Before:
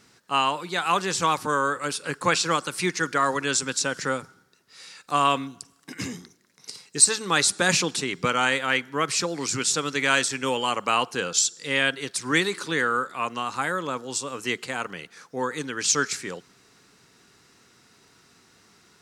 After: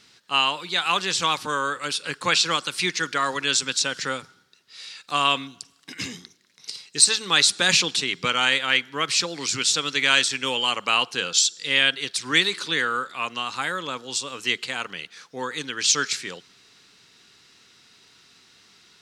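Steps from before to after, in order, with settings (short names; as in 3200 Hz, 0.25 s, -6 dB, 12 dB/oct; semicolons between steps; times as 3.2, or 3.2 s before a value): bell 3500 Hz +12.5 dB 1.6 oct; gain -4 dB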